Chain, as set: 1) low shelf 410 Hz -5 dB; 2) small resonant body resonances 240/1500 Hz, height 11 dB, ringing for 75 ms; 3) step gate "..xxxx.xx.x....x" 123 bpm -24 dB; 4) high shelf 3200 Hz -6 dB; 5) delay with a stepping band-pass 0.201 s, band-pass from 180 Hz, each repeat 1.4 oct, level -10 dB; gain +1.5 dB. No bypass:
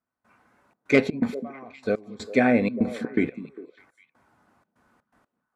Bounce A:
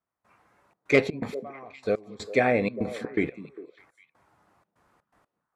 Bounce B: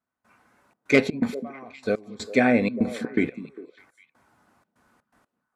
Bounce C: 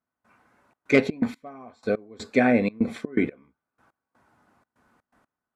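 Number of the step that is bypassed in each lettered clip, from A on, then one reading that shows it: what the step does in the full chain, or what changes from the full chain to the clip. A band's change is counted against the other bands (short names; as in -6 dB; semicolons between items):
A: 2, 250 Hz band -6.0 dB; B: 4, 4 kHz band +3.5 dB; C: 5, echo-to-direct -17.0 dB to none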